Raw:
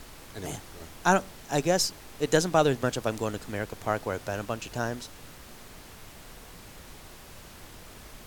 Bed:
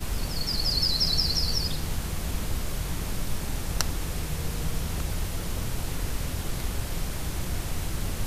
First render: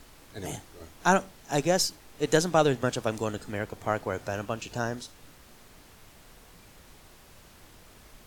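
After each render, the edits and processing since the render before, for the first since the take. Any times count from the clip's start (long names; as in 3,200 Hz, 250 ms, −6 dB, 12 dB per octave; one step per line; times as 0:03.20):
noise reduction from a noise print 6 dB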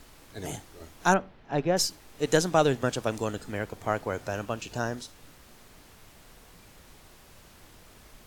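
0:01.14–0:01.77: high-frequency loss of the air 340 metres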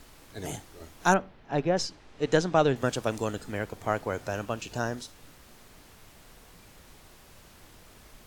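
0:01.69–0:02.76: high-frequency loss of the air 110 metres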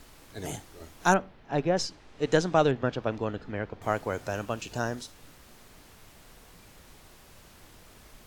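0:02.71–0:03.82: high-frequency loss of the air 250 metres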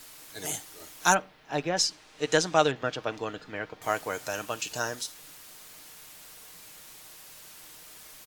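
spectral tilt +3 dB per octave
comb filter 6.5 ms, depth 36%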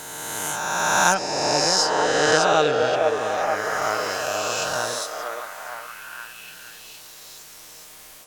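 peak hold with a rise ahead of every peak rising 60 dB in 2.39 s
echo through a band-pass that steps 465 ms, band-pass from 540 Hz, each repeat 0.7 octaves, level −0.5 dB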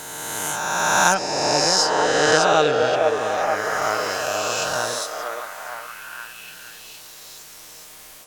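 level +1.5 dB
brickwall limiter −2 dBFS, peak gain reduction 1.5 dB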